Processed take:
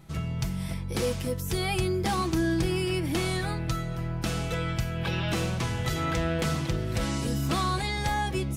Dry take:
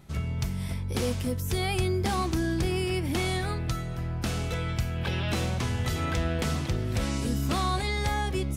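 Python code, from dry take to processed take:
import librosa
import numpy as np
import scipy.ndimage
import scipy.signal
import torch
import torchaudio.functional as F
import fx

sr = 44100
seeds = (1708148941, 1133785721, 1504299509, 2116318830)

y = x + 0.42 * np.pad(x, (int(6.1 * sr / 1000.0), 0))[:len(x)]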